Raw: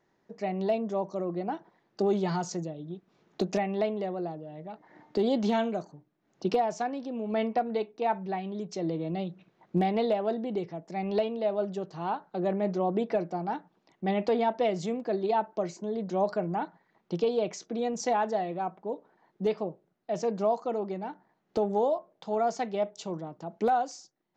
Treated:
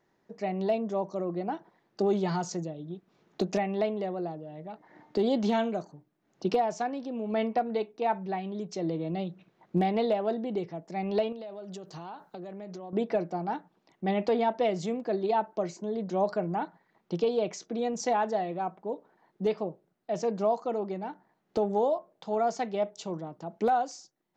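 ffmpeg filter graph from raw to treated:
-filter_complex "[0:a]asettb=1/sr,asplit=3[s0][s1][s2];[s0]atrim=end=11.324[s3];[s1]atrim=start=11.32:end=12.93,asetpts=PTS-STARTPTS,afade=t=in:d=0.004:c=qsin,afade=t=out:st=1.606:d=0.004:c=qsin,highshelf=f=4300:g=11.5,acompressor=threshold=0.0141:ratio=16:attack=3.2:release=140:knee=1:detection=peak[s4];[s2]atrim=start=12.926[s5];[s3][s4]acrossfade=d=0.004:c1=hsin:c2=qsin[s6];[s6][s5]acrossfade=d=0.004:c1=qsin:c2=hsin"

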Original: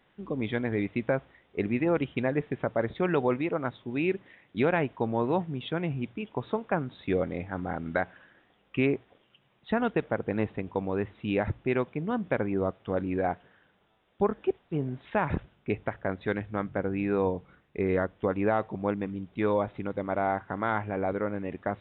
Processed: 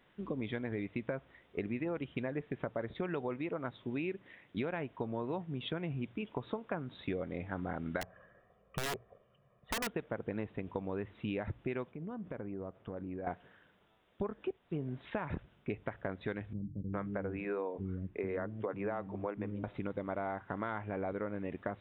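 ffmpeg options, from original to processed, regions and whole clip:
-filter_complex "[0:a]asettb=1/sr,asplit=3[s0][s1][s2];[s0]atrim=end=8.014[s3];[s1]atrim=start=8.01:end=9.87,asetpts=PTS-STARTPTS,afade=t=in:d=0.004:c=qsin,afade=t=out:st=1.856:d=0.004:c=qsin,lowpass=1100,aecho=1:1:1.7:0.79,atrim=end_sample=82026,aeval=exprs='(mod(13.3*val(0)+1,2)-1)/13.3':c=same[s4];[s2]atrim=start=9.866[s5];[s3][s4]acrossfade=d=0.004:c1=hsin:c2=qsin[s6];[s6][s5]acrossfade=d=0.004:c1=qsin:c2=hsin,asettb=1/sr,asplit=3[s7][s8][s9];[s7]atrim=end=11.914[s10];[s8]atrim=start=11.91:end=13.27,asetpts=PTS-STARTPTS,afade=t=in:d=0.004:c=qsin,afade=t=out:st=1.356:d=0.004:c=qsin,lowpass=f=1200:p=1,acompressor=threshold=0.0126:ratio=5:attack=3.2:release=140:knee=1:detection=peak[s11];[s9]atrim=start=13.266[s12];[s10][s11]acrossfade=d=0.004:c1=hsin:c2=qsin[s13];[s13][s12]acrossfade=d=0.004:c1=qsin:c2=hsin,asettb=1/sr,asplit=3[s14][s15][s16];[s14]atrim=end=16.534[s17];[s15]atrim=start=16.53:end=19.64,asetpts=PTS-STARTPTS,afade=t=in:d=0.004:c=qsin,afade=t=out:st=3.106:d=0.004:c=qsin,lowpass=2600,bandreject=f=60:t=h:w=6,bandreject=f=120:t=h:w=6,bandreject=f=180:t=h:w=6,bandreject=f=240:t=h:w=6,bandreject=f=300:t=h:w=6,bandreject=f=360:t=h:w=6,acrossover=split=250[s18][s19];[s19]adelay=400[s20];[s18][s20]amix=inputs=2:normalize=0,atrim=end_sample=137151[s21];[s16]atrim=start=19.636[s22];[s17][s21]acrossfade=d=0.004:c1=hsin:c2=qsin[s23];[s23][s22]acrossfade=d=0.004:c1=qsin:c2=hsin,bandreject=f=800:w=16,acompressor=threshold=0.0224:ratio=6,volume=0.891"

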